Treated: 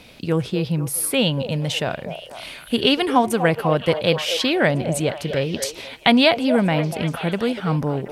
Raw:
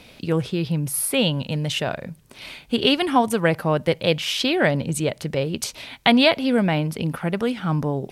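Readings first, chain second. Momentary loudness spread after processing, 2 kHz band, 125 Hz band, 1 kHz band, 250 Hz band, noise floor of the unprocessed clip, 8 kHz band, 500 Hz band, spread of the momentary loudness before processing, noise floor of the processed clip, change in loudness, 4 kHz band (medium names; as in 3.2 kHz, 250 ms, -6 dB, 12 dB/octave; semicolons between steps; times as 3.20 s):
9 LU, +1.0 dB, +1.0 dB, +2.0 dB, +1.0 dB, -49 dBFS, +1.0 dB, +2.0 dB, 9 LU, -41 dBFS, +1.5 dB, +1.0 dB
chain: repeats whose band climbs or falls 242 ms, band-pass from 570 Hz, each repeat 0.7 oct, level -6.5 dB; trim +1 dB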